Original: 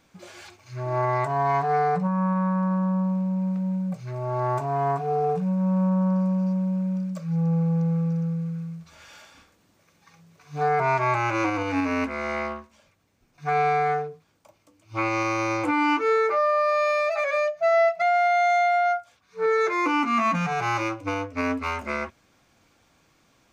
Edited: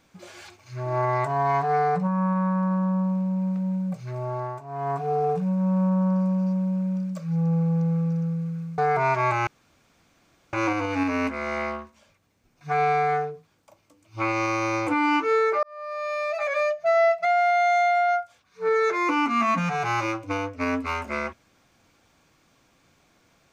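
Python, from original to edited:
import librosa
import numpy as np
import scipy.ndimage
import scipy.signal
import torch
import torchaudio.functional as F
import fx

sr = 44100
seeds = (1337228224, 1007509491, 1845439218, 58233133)

y = fx.edit(x, sr, fx.fade_down_up(start_s=4.2, length_s=0.85, db=-14.0, fade_s=0.41),
    fx.cut(start_s=8.78, length_s=1.83),
    fx.insert_room_tone(at_s=11.3, length_s=1.06),
    fx.fade_in_span(start_s=16.4, length_s=0.97), tone=tone)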